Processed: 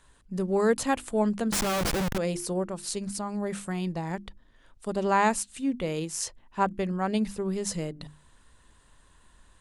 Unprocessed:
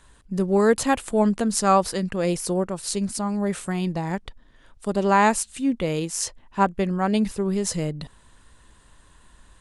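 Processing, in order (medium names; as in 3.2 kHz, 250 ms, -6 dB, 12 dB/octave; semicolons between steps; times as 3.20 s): hum notches 50/100/150/200/250/300/350 Hz; 1.52–2.18 s: Schmitt trigger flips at -29.5 dBFS; trim -5 dB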